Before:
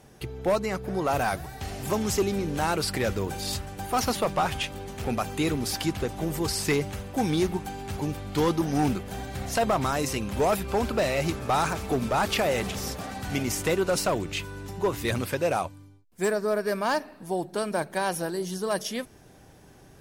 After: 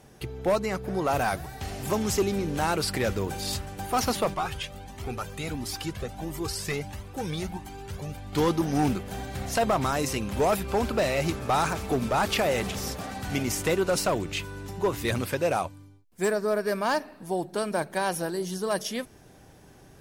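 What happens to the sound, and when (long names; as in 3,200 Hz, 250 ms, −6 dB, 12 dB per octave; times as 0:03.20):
0:04.34–0:08.33: flanger whose copies keep moving one way rising 1.5 Hz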